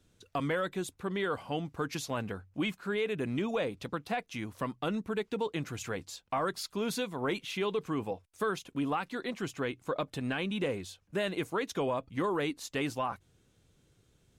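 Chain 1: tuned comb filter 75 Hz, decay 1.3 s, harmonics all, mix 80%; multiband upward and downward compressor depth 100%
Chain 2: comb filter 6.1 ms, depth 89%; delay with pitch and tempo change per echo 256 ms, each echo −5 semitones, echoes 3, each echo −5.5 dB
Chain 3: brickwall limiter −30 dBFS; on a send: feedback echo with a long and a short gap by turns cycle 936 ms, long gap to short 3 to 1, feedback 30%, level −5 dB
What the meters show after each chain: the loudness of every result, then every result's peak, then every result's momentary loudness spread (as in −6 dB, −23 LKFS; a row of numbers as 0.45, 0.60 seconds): −44.5, −31.5, −38.5 LKFS; −23.5, −16.0, −25.0 dBFS; 4, 5, 4 LU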